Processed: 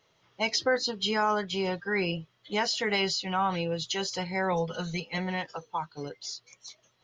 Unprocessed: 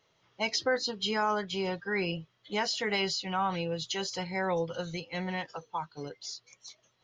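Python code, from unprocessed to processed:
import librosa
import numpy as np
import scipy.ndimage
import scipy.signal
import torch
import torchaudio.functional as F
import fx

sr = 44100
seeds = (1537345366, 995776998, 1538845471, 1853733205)

y = fx.comb(x, sr, ms=4.7, depth=0.65, at=(4.52, 5.18))
y = F.gain(torch.from_numpy(y), 2.5).numpy()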